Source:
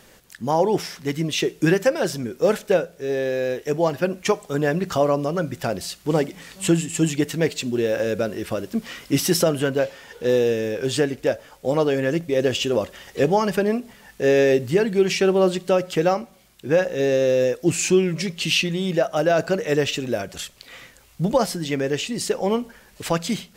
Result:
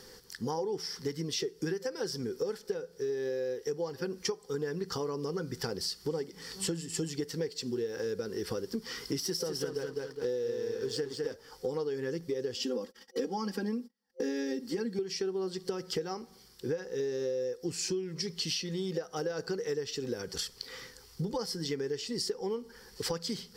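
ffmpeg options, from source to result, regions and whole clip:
-filter_complex "[0:a]asettb=1/sr,asplit=3[a][b][c];[a]atrim=end=9.204[d];[b]atrim=start=9.2:end=11.34,asetpts=PTS-STARTPTS,afade=t=in:d=0.004:c=qsin,afade=t=out:st=2.136:d=0.004:c=qsin,aeval=exprs='sgn(val(0))*max(abs(val(0))-0.0133,0)':c=same,aecho=1:1:206|412|618:0.501|0.125|0.0313,atrim=end_sample=94374[e];[c]atrim=start=11.336[f];[d][e]acrossfade=d=0.004:c1=hsin:c2=qsin[g];[g][f]acrossfade=d=0.004:c1=qsin:c2=hsin,asettb=1/sr,asplit=3[h][i][j];[h]atrim=end=12.564[k];[i]atrim=start=12.56:end=14.99,asetpts=PTS-STARTPTS,afade=t=in:d=0.004:c=qsin,afade=t=out:st=2.426:d=0.004:c=qsin,agate=range=-37dB:threshold=-41dB:ratio=16:release=100:detection=peak,lowshelf=f=160:t=q:w=3:g=-9.5,aecho=1:1:3.7:0.76,atrim=end_sample=107163[l];[j]atrim=start=14.986[m];[k][l]acrossfade=d=0.004:c1=hsin:c2=qsin[n];[n][m]acrossfade=d=0.004:c1=qsin:c2=hsin,superequalizer=7b=2.24:8b=0.251:12b=0.501:14b=3.16,acompressor=threshold=-27dB:ratio=10,volume=-4dB"

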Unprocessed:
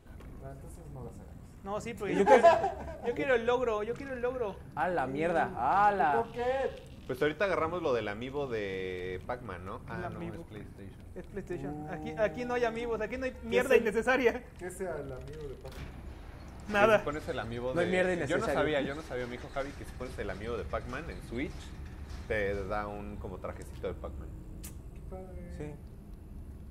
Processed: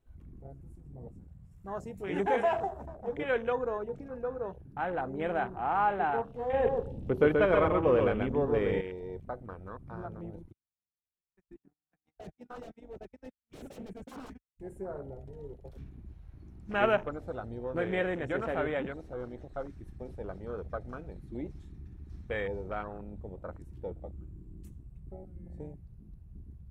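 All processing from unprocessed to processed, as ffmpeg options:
-filter_complex "[0:a]asettb=1/sr,asplit=3[a][b][c];[a]atrim=end=1.514[d];[b]atrim=start=1.51:end=2.86,asetpts=PTS-STARTPTS,afade=t=in:d=0.004:c=qsin,afade=t=out:st=1.346:d=0.004:c=qsin,highshelf=f=4.5k:g=9.5,acompressor=threshold=-24dB:ratio=2:attack=3.2:release=140:knee=1:detection=peak[e];[c]atrim=start=2.856[f];[d][e]acrossfade=d=0.004:c1=hsin:c2=qsin[g];[g][f]acrossfade=d=0.004:c1=qsin:c2=hsin,asettb=1/sr,asplit=3[h][i][j];[h]atrim=end=6.534[k];[i]atrim=start=6.53:end=8.81,asetpts=PTS-STARTPTS,afade=t=in:d=0.004:c=qsin,afade=t=out:st=2.276:d=0.004:c=qsin,tiltshelf=f=820:g=4,acontrast=37,aecho=1:1:131:0.631,atrim=end_sample=100548[l];[j]atrim=start=8.806[m];[k][l]acrossfade=d=0.004:c1=hsin:c2=qsin[n];[n][m]acrossfade=d=0.004:c1=qsin:c2=hsin,asettb=1/sr,asplit=3[o][p][q];[o]atrim=end=10.524[r];[p]atrim=start=10.52:end=14.6,asetpts=PTS-STARTPTS,afade=t=in:d=0.004:c=qsin,afade=t=out:st=4.076:d=0.004:c=qsin,agate=range=-43dB:threshold=-35dB:ratio=16:release=100:detection=peak,equalizer=f=520:w=1.4:g=-8.5,aeval=exprs='0.02*(abs(mod(val(0)/0.02+3,4)-2)-1)':c=same[s];[q]atrim=start=14.596[t];[r][s]acrossfade=d=0.004:c1=hsin:c2=qsin[u];[u][t]acrossfade=d=0.004:c1=qsin:c2=hsin,bandreject=f=4.8k:w=21,afwtdn=0.0126,volume=-2dB"

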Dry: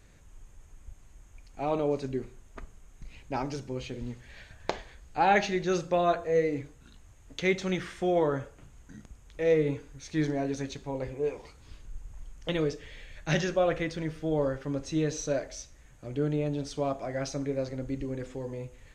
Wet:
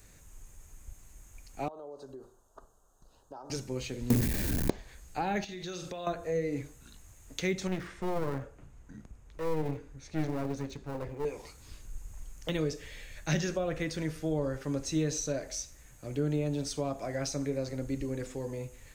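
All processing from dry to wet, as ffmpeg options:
-filter_complex "[0:a]asettb=1/sr,asplit=3[a][b][c];[a]atrim=end=1.684[d];[b]atrim=start=1.68:end=3.5,asetpts=PTS-STARTPTS,afade=t=in:d=0.004:c=qsin,afade=t=out:st=1.816:d=0.004:c=qsin,acrossover=split=410 2500:gain=0.158 1 0.2[e][f][g];[e][f][g]amix=inputs=3:normalize=0,acompressor=threshold=-41dB:ratio=6:attack=3.2:release=140:knee=1:detection=peak,asuperstop=centerf=2200:order=4:qfactor=0.9[h];[c]atrim=start=3.496[i];[d][h]acrossfade=d=0.004:c1=hsin:c2=qsin[j];[j][i]acrossfade=d=0.004:c1=qsin:c2=hsin,asettb=1/sr,asplit=3[k][l][m];[k]atrim=end=4.104[n];[l]atrim=start=4.1:end=4.7,asetpts=PTS-STARTPTS,afade=t=in:d=0.004:c=qsin,afade=t=out:st=0.596:d=0.004:c=qsin,aeval=exprs='val(0)+0.5*0.0562*sgn(val(0))':c=same,equalizer=f=280:w=0.7:g=13,bandreject=f=1.3k:w=11[o];[m]atrim=start=4.696[p];[n][o]acrossfade=d=0.004:c1=hsin:c2=qsin[q];[q][p]acrossfade=d=0.004:c1=qsin:c2=hsin,asettb=1/sr,asplit=3[r][s][t];[r]atrim=end=5.444[u];[s]atrim=start=5.44:end=6.07,asetpts=PTS-STARTPTS,afade=t=in:d=0.004:c=qsin,afade=t=out:st=0.626:d=0.004:c=qsin,equalizer=f=3.4k:w=2.7:g=9.5,asplit=2[v][w];[w]adelay=44,volume=-10.5dB[x];[v][x]amix=inputs=2:normalize=0,atrim=end_sample=27783,acompressor=threshold=-36dB:ratio=10:attack=3.2:release=140:knee=1:detection=peak[y];[t]atrim=start=6.066[z];[u][y]acrossfade=d=0.004:c1=hsin:c2=qsin[aa];[aa][z]acrossfade=d=0.004:c1=qsin:c2=hsin,asettb=1/sr,asplit=3[ab][ac][ad];[ab]atrim=end=7.674[ae];[ac]atrim=start=7.67:end=11.25,asetpts=PTS-STARTPTS,afade=t=in:d=0.004:c=qsin,afade=t=out:st=3.576:d=0.004:c=qsin,lowpass=f=1.3k:p=1,aeval=exprs='clip(val(0),-1,0.0106)':c=same[af];[ad]atrim=start=11.246[ag];[ae][af]acrossfade=d=0.004:c1=hsin:c2=qsin[ah];[ah][ag]acrossfade=d=0.004:c1=qsin:c2=hsin,aemphasis=mode=production:type=50fm,acrossover=split=310[ai][aj];[aj]acompressor=threshold=-32dB:ratio=6[ak];[ai][ak]amix=inputs=2:normalize=0,equalizer=f=3.2k:w=6.2:g=-4"

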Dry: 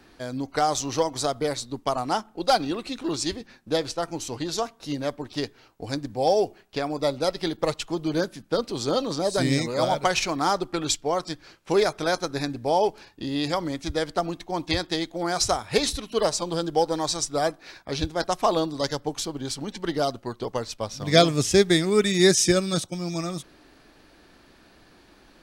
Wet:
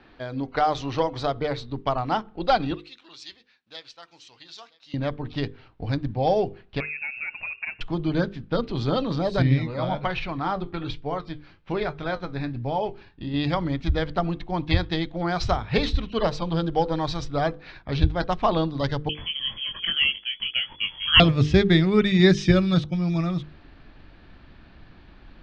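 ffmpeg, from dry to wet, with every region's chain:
-filter_complex "[0:a]asettb=1/sr,asplit=3[a][b][c];[a]atrim=end=2.744[d];[b]atrim=start=2.74:end=4.94,asetpts=PTS-STARTPTS,afade=t=in:d=0.004:c=qsin,afade=t=out:st=2.196:d=0.004:c=qsin,aderivative,aecho=1:1:974:0.0794,atrim=end_sample=97020[e];[c]atrim=start=4.936[f];[d][e]acrossfade=d=0.004:c1=hsin:c2=qsin[g];[g][f]acrossfade=d=0.004:c1=qsin:c2=hsin,asettb=1/sr,asplit=3[h][i][j];[h]atrim=end=6.804[k];[i]atrim=start=6.8:end=7.81,asetpts=PTS-STARTPTS,afade=t=in:d=0.004:c=qsin,afade=t=out:st=1.006:d=0.004:c=qsin,equalizer=f=820:t=o:w=1.1:g=-4.5,acompressor=threshold=-31dB:ratio=3:attack=3.2:release=140:knee=1:detection=peak,lowpass=f=2.4k:t=q:w=0.5098,lowpass=f=2.4k:t=q:w=0.6013,lowpass=f=2.4k:t=q:w=0.9,lowpass=f=2.4k:t=q:w=2.563,afreqshift=-2800[l];[j]atrim=start=7.806[m];[k][l]acrossfade=d=0.004:c1=hsin:c2=qsin[n];[n][m]acrossfade=d=0.004:c1=qsin:c2=hsin,asettb=1/sr,asplit=3[o][p][q];[o]atrim=end=9.424[r];[p]atrim=start=9.42:end=13.34,asetpts=PTS-STARTPTS,afade=t=in:d=0.004:c=qsin,afade=t=out:st=3.916:d=0.004:c=qsin,acrossover=split=4500[s][t];[t]acompressor=threshold=-46dB:ratio=4:attack=1:release=60[u];[s][u]amix=inputs=2:normalize=0,flanger=delay=6.6:depth=5.1:regen=67:speed=1.2:shape=triangular[v];[q]atrim=start=13.336[w];[r][v]acrossfade=d=0.004:c1=hsin:c2=qsin[x];[x][w]acrossfade=d=0.004:c1=qsin:c2=hsin,asettb=1/sr,asplit=3[y][z][aa];[y]atrim=end=19.094[ab];[z]atrim=start=19.09:end=21.2,asetpts=PTS-STARTPTS,afade=t=in:d=0.004:c=qsin,afade=t=out:st=2.106:d=0.004:c=qsin,asplit=2[ac][ad];[ad]adelay=22,volume=-4dB[ae];[ac][ae]amix=inputs=2:normalize=0,atrim=end_sample=93051,lowpass=f=2.9k:t=q:w=0.5098,lowpass=f=2.9k:t=q:w=0.6013,lowpass=f=2.9k:t=q:w=0.9,lowpass=f=2.9k:t=q:w=2.563,afreqshift=-3400[af];[aa]atrim=start=21.196[ag];[ab][af]acrossfade=d=0.004:c1=hsin:c2=qsin[ah];[ah][ag]acrossfade=d=0.004:c1=qsin:c2=hsin,asubboost=boost=4:cutoff=180,lowpass=f=3.7k:w=0.5412,lowpass=f=3.7k:w=1.3066,bandreject=f=50:t=h:w=6,bandreject=f=100:t=h:w=6,bandreject=f=150:t=h:w=6,bandreject=f=200:t=h:w=6,bandreject=f=250:t=h:w=6,bandreject=f=300:t=h:w=6,bandreject=f=350:t=h:w=6,bandreject=f=400:t=h:w=6,bandreject=f=450:t=h:w=6,bandreject=f=500:t=h:w=6,volume=1.5dB"

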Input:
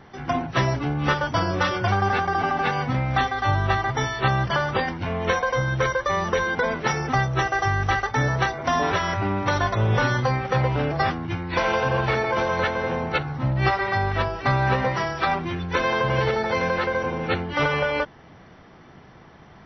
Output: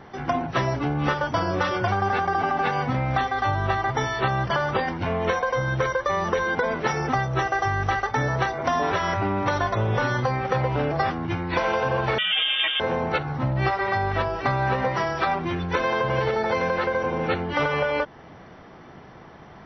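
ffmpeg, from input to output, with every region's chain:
-filter_complex "[0:a]asettb=1/sr,asplit=3[a][b][c];[a]atrim=end=12.184[d];[b]atrim=start=12.18:end=12.8,asetpts=PTS-STARTPTS,afade=t=in:d=0.004:c=qsin,afade=t=out:st=0.616:d=0.004:c=qsin,lowpass=f=3.1k:t=q:w=0.5098,lowpass=f=3.1k:t=q:w=0.6013,lowpass=f=3.1k:t=q:w=0.9,lowpass=f=3.1k:t=q:w=2.563,afreqshift=-3700,aecho=1:1:6.3:0.92,atrim=end_sample=27342[e];[c]atrim=start=12.796[f];[d][e]acrossfade=d=0.004:c1=hsin:c2=qsin[g];[g][f]acrossfade=d=0.004:c1=qsin:c2=hsin,equalizer=f=620:t=o:w=2.9:g=4.5,acompressor=threshold=-21dB:ratio=3"

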